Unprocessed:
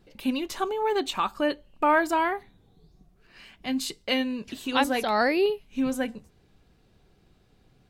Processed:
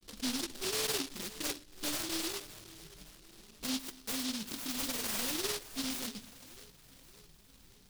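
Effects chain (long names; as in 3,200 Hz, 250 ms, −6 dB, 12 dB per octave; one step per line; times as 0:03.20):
high-shelf EQ 4,300 Hz +7.5 dB
in parallel at 0 dB: downward compressor, threshold −37 dBFS, peak gain reduction 19 dB
on the sum: low-pass filter sweep 480 Hz → 9,300 Hz, 0:03.62–0:04.12
soft clipping −26 dBFS, distortion −7 dB
granular cloud 100 ms, grains 20 per second, spray 28 ms, pitch spread up and down by 0 semitones
flanger 0.26 Hz, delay 3.4 ms, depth 7.4 ms, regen −48%
echo with a time of its own for lows and highs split 330 Hz, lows 116 ms, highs 564 ms, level −15.5 dB
short delay modulated by noise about 4,100 Hz, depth 0.46 ms
level −2 dB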